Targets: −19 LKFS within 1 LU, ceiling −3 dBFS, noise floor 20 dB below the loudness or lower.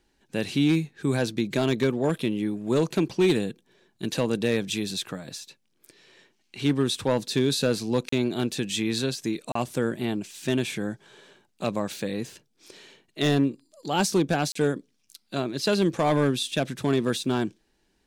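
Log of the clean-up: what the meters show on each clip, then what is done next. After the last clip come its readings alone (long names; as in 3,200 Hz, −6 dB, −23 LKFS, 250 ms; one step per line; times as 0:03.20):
share of clipped samples 0.5%; peaks flattened at −14.5 dBFS; number of dropouts 3; longest dropout 34 ms; integrated loudness −26.5 LKFS; sample peak −14.5 dBFS; target loudness −19.0 LKFS
→ clipped peaks rebuilt −14.5 dBFS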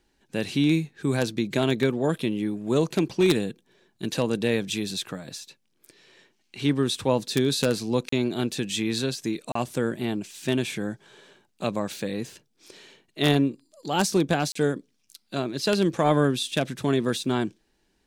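share of clipped samples 0.0%; number of dropouts 3; longest dropout 34 ms
→ repair the gap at 0:08.09/0:09.52/0:14.52, 34 ms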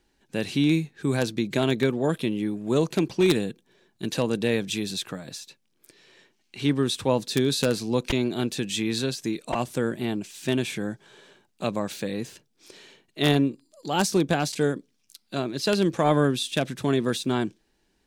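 number of dropouts 0; integrated loudness −26.0 LKFS; sample peak −5.5 dBFS; target loudness −19.0 LKFS
→ level +7 dB
brickwall limiter −3 dBFS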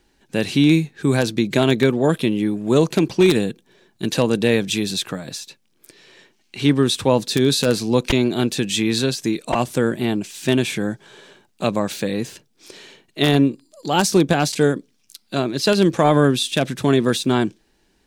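integrated loudness −19.5 LKFS; sample peak −3.0 dBFS; background noise floor −63 dBFS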